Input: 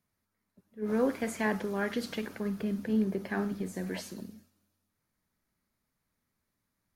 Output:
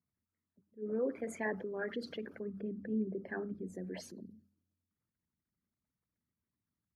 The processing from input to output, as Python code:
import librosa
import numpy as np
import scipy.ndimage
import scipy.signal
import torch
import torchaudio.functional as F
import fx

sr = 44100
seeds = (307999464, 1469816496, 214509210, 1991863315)

y = fx.envelope_sharpen(x, sr, power=2.0)
y = scipy.signal.sosfilt(scipy.signal.butter(2, 65.0, 'highpass', fs=sr, output='sos'), y)
y = fx.hum_notches(y, sr, base_hz=50, count=4)
y = y * 10.0 ** (-6.5 / 20.0)